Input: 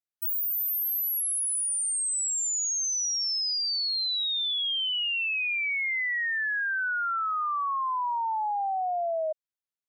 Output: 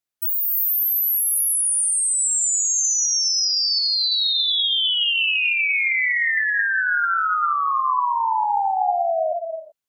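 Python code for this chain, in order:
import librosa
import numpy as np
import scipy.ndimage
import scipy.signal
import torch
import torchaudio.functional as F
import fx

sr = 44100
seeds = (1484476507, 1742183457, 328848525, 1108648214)

y = fx.rev_gated(x, sr, seeds[0], gate_ms=400, shape='rising', drr_db=4.0)
y = y * librosa.db_to_amplitude(6.5)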